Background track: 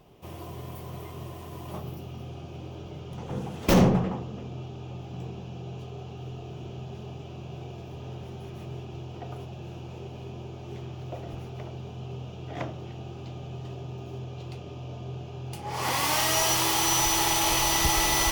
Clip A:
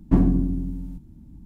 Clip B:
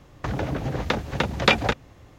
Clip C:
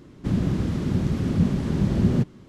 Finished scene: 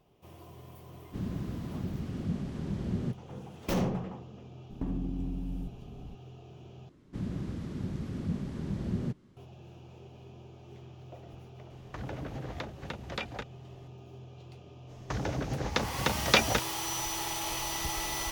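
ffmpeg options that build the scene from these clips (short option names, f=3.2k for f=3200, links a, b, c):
-filter_complex "[3:a]asplit=2[a][b];[2:a]asplit=2[c][d];[0:a]volume=-10.5dB[e];[1:a]acompressor=threshold=-29dB:ratio=6:attack=3.2:release=140:knee=1:detection=peak[f];[c]acompressor=threshold=-29dB:ratio=2:attack=0.33:release=877:knee=1:detection=peak[g];[d]equalizer=f=5.9k:w=1.5:g=9[h];[e]asplit=2[i][j];[i]atrim=end=6.894[k];[b]atrim=end=2.48,asetpts=PTS-STARTPTS,volume=-12.5dB[l];[j]atrim=start=9.366[m];[a]atrim=end=2.48,asetpts=PTS-STARTPTS,volume=-12.5dB,afade=t=in:d=0.004:c=hsin,afade=t=out:st=2.476:d=0.004:c=hsin,adelay=890[n];[f]atrim=end=1.45,asetpts=PTS-STARTPTS,volume=-1.5dB,afade=t=in:d=0.004:c=hsin,afade=t=out:st=1.446:d=0.004:c=hsin,adelay=4700[o];[g]atrim=end=2.18,asetpts=PTS-STARTPTS,volume=-6.5dB,afade=t=in:d=0.004:c=hsin,afade=t=out:st=2.176:d=0.004:c=hsin,adelay=515970S[p];[h]atrim=end=2.18,asetpts=PTS-STARTPTS,volume=-6dB,afade=t=in:d=0.05,afade=t=out:st=2.13:d=0.05,adelay=14860[q];[k][l]acrossfade=d=0.004:c1=hsin:c2=hsin[r];[r][m]acrossfade=d=0.004:c1=hsin:c2=hsin[s];[s][n][o][p][q]amix=inputs=5:normalize=0"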